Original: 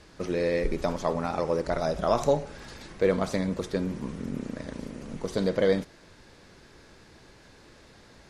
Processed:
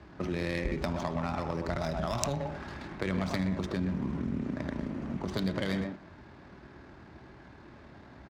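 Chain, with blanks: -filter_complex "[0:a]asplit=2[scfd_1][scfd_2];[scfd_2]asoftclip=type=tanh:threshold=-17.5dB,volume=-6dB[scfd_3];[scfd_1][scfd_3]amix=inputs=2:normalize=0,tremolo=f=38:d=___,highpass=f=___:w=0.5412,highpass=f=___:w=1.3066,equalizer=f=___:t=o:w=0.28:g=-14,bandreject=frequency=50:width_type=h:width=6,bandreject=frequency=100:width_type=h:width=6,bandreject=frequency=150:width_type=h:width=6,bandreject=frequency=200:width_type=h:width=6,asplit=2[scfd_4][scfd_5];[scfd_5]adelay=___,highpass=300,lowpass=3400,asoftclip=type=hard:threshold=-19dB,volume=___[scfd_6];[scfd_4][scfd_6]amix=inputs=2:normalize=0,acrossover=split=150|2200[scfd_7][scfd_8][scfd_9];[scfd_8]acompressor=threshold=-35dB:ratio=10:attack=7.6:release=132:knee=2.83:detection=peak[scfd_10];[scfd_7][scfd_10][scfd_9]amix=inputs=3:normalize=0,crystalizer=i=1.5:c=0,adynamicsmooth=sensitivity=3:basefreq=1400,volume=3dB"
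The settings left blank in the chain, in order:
0.261, 46, 46, 480, 120, -6dB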